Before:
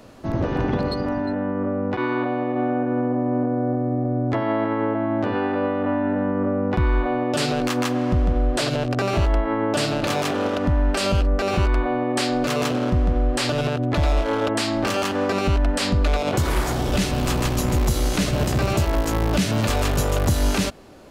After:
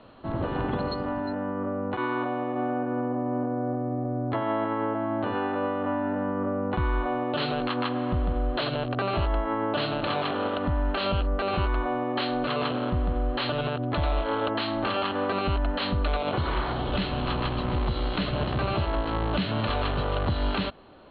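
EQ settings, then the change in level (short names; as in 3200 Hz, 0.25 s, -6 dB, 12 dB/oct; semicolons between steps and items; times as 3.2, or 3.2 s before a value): rippled Chebyshev low-pass 4300 Hz, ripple 6 dB; -1.0 dB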